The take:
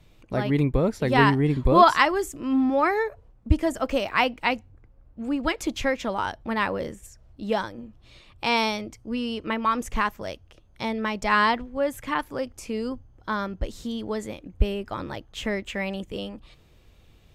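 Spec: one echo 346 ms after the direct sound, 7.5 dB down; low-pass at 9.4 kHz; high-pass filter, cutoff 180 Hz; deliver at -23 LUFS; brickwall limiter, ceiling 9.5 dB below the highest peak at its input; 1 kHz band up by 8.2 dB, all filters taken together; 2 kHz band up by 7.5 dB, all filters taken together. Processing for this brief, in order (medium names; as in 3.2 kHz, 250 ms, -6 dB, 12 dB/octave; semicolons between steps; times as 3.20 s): high-pass 180 Hz; low-pass 9.4 kHz; peaking EQ 1 kHz +8 dB; peaking EQ 2 kHz +6.5 dB; peak limiter -6.5 dBFS; delay 346 ms -7.5 dB; trim -1 dB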